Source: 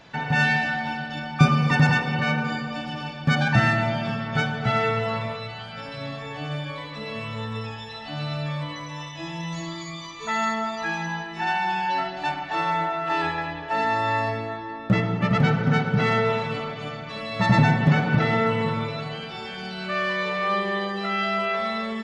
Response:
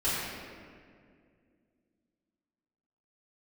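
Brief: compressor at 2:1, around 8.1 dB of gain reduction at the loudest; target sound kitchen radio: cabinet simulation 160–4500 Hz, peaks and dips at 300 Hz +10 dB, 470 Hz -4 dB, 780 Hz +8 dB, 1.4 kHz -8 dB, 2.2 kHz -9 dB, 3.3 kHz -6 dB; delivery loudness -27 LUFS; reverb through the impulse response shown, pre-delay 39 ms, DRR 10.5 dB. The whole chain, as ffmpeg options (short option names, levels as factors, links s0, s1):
-filter_complex "[0:a]acompressor=threshold=0.0447:ratio=2,asplit=2[s0][s1];[1:a]atrim=start_sample=2205,adelay=39[s2];[s1][s2]afir=irnorm=-1:irlink=0,volume=0.0891[s3];[s0][s3]amix=inputs=2:normalize=0,highpass=160,equalizer=f=300:t=q:w=4:g=10,equalizer=f=470:t=q:w=4:g=-4,equalizer=f=780:t=q:w=4:g=8,equalizer=f=1400:t=q:w=4:g=-8,equalizer=f=2200:t=q:w=4:g=-9,equalizer=f=3300:t=q:w=4:g=-6,lowpass=f=4500:w=0.5412,lowpass=f=4500:w=1.3066,volume=1.19"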